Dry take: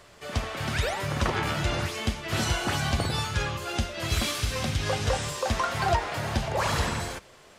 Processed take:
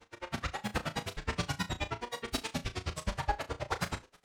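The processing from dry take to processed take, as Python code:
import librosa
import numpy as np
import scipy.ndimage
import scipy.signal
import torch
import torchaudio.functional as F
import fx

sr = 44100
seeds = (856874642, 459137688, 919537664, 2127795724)

y = fx.granulator(x, sr, seeds[0], grain_ms=100.0, per_s=5.3, spray_ms=100.0, spread_st=7)
y = fx.room_flutter(y, sr, wall_m=10.7, rt60_s=0.33)
y = fx.stretch_vocoder(y, sr, factor=0.56)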